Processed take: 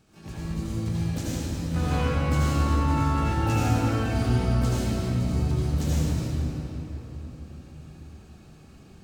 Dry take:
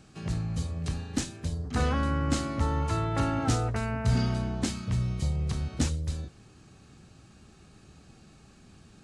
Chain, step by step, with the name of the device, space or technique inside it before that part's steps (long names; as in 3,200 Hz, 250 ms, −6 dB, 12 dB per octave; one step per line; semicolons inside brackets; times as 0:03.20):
shimmer-style reverb (pitch-shifted copies added +12 semitones −8 dB; convolution reverb RT60 4.1 s, pre-delay 70 ms, DRR −9 dB)
level −8 dB